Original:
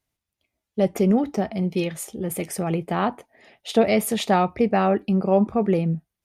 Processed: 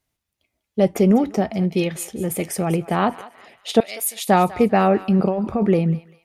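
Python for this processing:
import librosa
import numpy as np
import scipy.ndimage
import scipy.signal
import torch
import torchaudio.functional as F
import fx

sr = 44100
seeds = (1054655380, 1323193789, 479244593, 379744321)

y = fx.differentiator(x, sr, at=(3.8, 4.29))
y = fx.over_compress(y, sr, threshold_db=-23.0, ratio=-1.0, at=(5.19, 5.68))
y = fx.echo_thinned(y, sr, ms=196, feedback_pct=42, hz=1100.0, wet_db=-14.5)
y = y * librosa.db_to_amplitude(3.5)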